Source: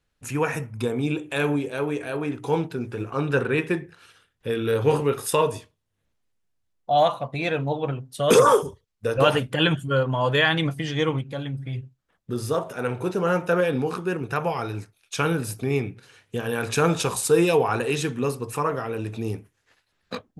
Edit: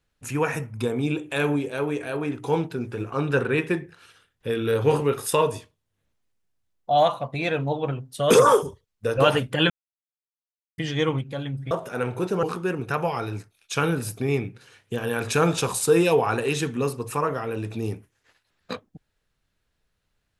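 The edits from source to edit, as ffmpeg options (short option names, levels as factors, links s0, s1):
-filter_complex "[0:a]asplit=5[s0][s1][s2][s3][s4];[s0]atrim=end=9.7,asetpts=PTS-STARTPTS,afade=t=out:st=9.696:d=0.004:c=hsin[s5];[s1]atrim=start=9.7:end=10.78,asetpts=PTS-STARTPTS,volume=0[s6];[s2]atrim=start=10.78:end=11.712,asetpts=PTS-STARTPTS,afade=t=in:d=0.004:c=hsin[s7];[s3]atrim=start=12.548:end=13.272[s8];[s4]atrim=start=13.848[s9];[s5][s6][s7]concat=n=3:v=0:a=1[s10];[s10][s8]acrossfade=d=0.004:c1=hsin:c2=hsin[s11];[s11][s9]acrossfade=d=0.004:c1=hsin:c2=hsin"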